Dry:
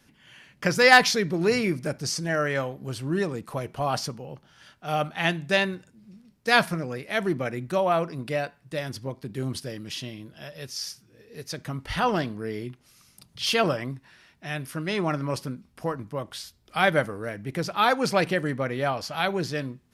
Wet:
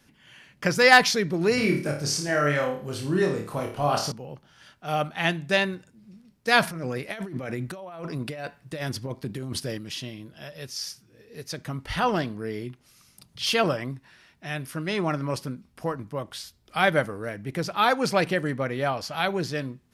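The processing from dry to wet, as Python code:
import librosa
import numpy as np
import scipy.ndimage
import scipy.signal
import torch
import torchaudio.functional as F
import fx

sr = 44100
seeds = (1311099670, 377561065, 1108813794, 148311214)

y = fx.room_flutter(x, sr, wall_m=4.7, rt60_s=0.43, at=(1.55, 4.12))
y = fx.over_compress(y, sr, threshold_db=-33.0, ratio=-1.0, at=(6.62, 9.78))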